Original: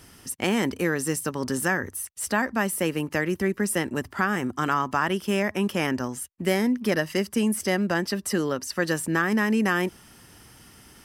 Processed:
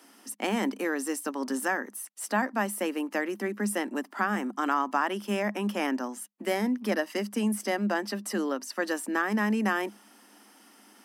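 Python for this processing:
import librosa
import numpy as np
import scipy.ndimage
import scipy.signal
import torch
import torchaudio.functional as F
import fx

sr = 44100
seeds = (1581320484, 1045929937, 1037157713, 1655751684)

y = scipy.signal.sosfilt(scipy.signal.cheby1(6, 6, 200.0, 'highpass', fs=sr, output='sos'), x)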